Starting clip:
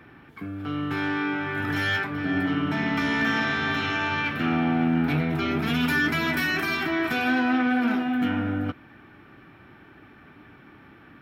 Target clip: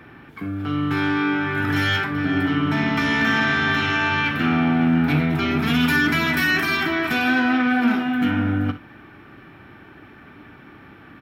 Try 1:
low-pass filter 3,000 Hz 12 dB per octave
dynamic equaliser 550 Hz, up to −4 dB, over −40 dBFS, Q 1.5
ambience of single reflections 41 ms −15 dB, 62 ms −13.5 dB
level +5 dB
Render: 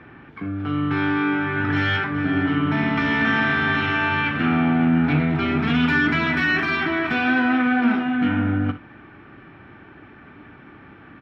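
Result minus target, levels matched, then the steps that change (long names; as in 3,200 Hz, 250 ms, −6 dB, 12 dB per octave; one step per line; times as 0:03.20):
4,000 Hz band −3.5 dB
remove: low-pass filter 3,000 Hz 12 dB per octave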